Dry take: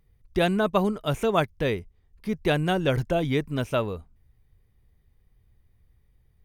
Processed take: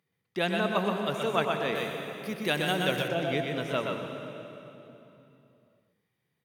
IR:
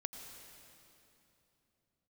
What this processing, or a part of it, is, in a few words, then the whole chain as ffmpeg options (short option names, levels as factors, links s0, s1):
PA in a hall: -filter_complex "[0:a]highpass=f=150:w=0.5412,highpass=f=150:w=1.3066,equalizer=f=2500:t=o:w=2.8:g=6.5,aecho=1:1:125:0.596[s0];[1:a]atrim=start_sample=2205[s1];[s0][s1]afir=irnorm=-1:irlink=0,asettb=1/sr,asplit=3[s2][s3][s4];[s2]atrim=end=1.754[s5];[s3]atrim=start=1.75:end=3.08,asetpts=PTS-STARTPTS,afade=t=in:d=0.004:c=qsin,afade=t=out:st=1.326:d=0.004:c=qsin,aemphasis=mode=production:type=50kf[s6];[s4]atrim=start=3.076[s7];[s5][s6]acrossfade=d=0.004:c1=hsin:c2=qsin[s8];[s8][s7]acrossfade=d=0.004:c1=qsin:c2=hsin,volume=0.531"